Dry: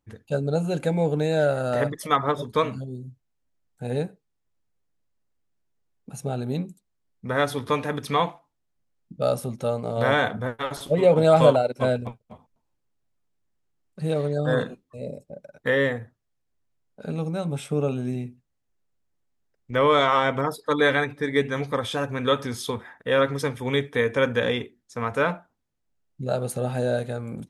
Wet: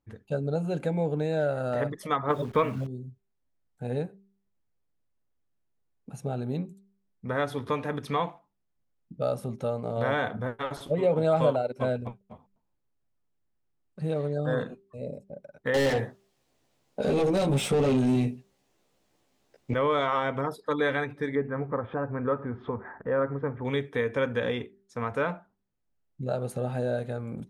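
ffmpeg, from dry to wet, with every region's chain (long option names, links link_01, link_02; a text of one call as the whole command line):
ffmpeg -i in.wav -filter_complex "[0:a]asettb=1/sr,asplit=3[link_01][link_02][link_03];[link_01]atrim=end=2.304[link_04];[link_02]atrim=start=2.3:end=2.87,asetpts=PTS-STARTPTS,afade=type=in:duration=0.004:curve=qsin,afade=type=out:start_time=0.566:duration=0.004:curve=qsin,highshelf=frequency=3600:width_type=q:width=1.5:gain=-9,acontrast=47,acrusher=bits=8:dc=4:mix=0:aa=0.000001[link_05];[link_03]atrim=start=2.866[link_06];[link_04][link_05]acrossfade=duration=0.004:curve1=hsin:curve2=qsin[link_07];[link_07][link_06]acrossfade=duration=0.004:curve1=qsin:curve2=hsin,asettb=1/sr,asplit=3[link_08][link_09][link_10];[link_08]atrim=end=15.744[link_11];[link_09]atrim=start=15.74:end=19.74,asetpts=PTS-STARTPTS,afade=type=in:duration=0.004:curve=qsin,afade=type=out:start_time=3.996:duration=0.004:curve=qsin,asplit=2[link_12][link_13];[link_13]adelay=15,volume=-2dB[link_14];[link_12][link_14]amix=inputs=2:normalize=0,atrim=end_sample=176400,asplit=2[link_15][link_16];[link_16]highpass=frequency=720:poles=1,volume=31dB,asoftclip=type=tanh:threshold=-8dB[link_17];[link_15][link_17]amix=inputs=2:normalize=0,lowpass=frequency=6900:poles=1,volume=-6dB,equalizer=frequency=1500:width=0.95:gain=-10[link_18];[link_10]atrim=start=19.736[link_19];[link_11][link_18]acrossfade=duration=0.004:curve1=hsin:curve2=qsin[link_20];[link_20][link_19]acrossfade=duration=0.004:curve1=qsin:curve2=hsin,asettb=1/sr,asplit=3[link_21][link_22][link_23];[link_21]atrim=end=21.354[link_24];[link_22]atrim=start=21.35:end=23.65,asetpts=PTS-STARTPTS,afade=type=in:duration=0.004:curve=qsin,afade=type=out:start_time=2.296:duration=0.004:curve=qsin,lowpass=frequency=1600:width=0.5412,lowpass=frequency=1600:width=1.3066,acompressor=mode=upward:threshold=-29dB:ratio=2.5:attack=3.2:release=140:knee=2.83:detection=peak[link_25];[link_23]atrim=start=23.646[link_26];[link_24][link_25]acrossfade=duration=0.004:curve1=hsin:curve2=qsin[link_27];[link_27][link_26]acrossfade=duration=0.004:curve1=qsin:curve2=hsin,highshelf=frequency=3400:gain=-9,bandreject=frequency=196.3:width_type=h:width=4,bandreject=frequency=392.6:width_type=h:width=4,acompressor=threshold=-26dB:ratio=1.5,volume=-2dB" out.wav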